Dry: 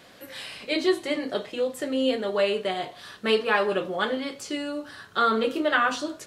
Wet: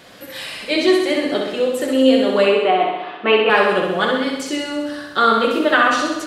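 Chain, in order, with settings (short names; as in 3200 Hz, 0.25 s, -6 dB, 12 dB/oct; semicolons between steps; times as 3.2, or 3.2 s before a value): 2.46–3.5 speaker cabinet 240–2800 Hz, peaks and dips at 320 Hz +9 dB, 760 Hz +9 dB, 1100 Hz +6 dB, 1700 Hz -3 dB, 2600 Hz +7 dB; flutter echo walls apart 11.1 m, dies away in 1 s; gain +6.5 dB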